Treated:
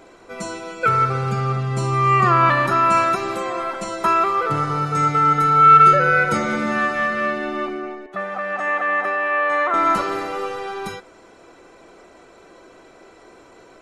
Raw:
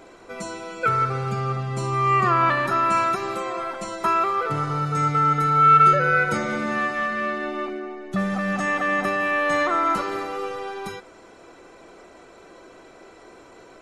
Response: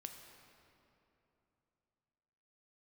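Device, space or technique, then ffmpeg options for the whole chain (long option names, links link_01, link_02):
keyed gated reverb: -filter_complex "[0:a]asplit=3[link_01][link_02][link_03];[1:a]atrim=start_sample=2205[link_04];[link_02][link_04]afir=irnorm=-1:irlink=0[link_05];[link_03]apad=whole_len=609461[link_06];[link_05][link_06]sidechaingate=range=-33dB:threshold=-34dB:ratio=16:detection=peak,volume=-0.5dB[link_07];[link_01][link_07]amix=inputs=2:normalize=0,asettb=1/sr,asplit=3[link_08][link_09][link_10];[link_08]atrim=end=8.064[link_11];[link_09]atrim=start=8.06:end=9.74,asetpts=PTS-STARTPTS,afade=type=in:duration=0.004:curve=qsin,afade=type=out:start_time=1.676:duration=0.004:curve=qsin,acrossover=split=400 2600:gain=0.0708 1 0.158[link_12][link_13][link_14];[link_12][link_13][link_14]amix=inputs=3:normalize=0[link_15];[link_10]atrim=start=9.736[link_16];[link_11][link_15]acrossfade=duration=0.004:curve1=hsin:curve2=qsin[link_17];[link_17][link_16]acrossfade=duration=0.004:curve1=qsin:curve2=hsin"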